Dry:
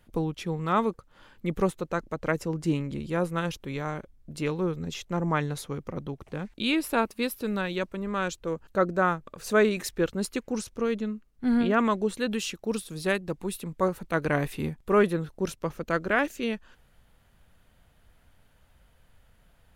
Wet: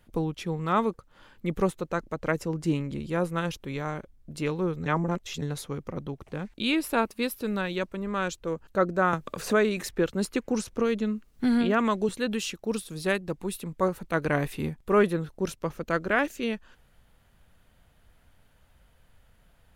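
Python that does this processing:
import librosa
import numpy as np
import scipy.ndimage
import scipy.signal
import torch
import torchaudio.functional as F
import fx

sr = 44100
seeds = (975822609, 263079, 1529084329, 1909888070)

y = fx.band_squash(x, sr, depth_pct=70, at=(9.13, 12.09))
y = fx.edit(y, sr, fx.reverse_span(start_s=4.86, length_s=0.56), tone=tone)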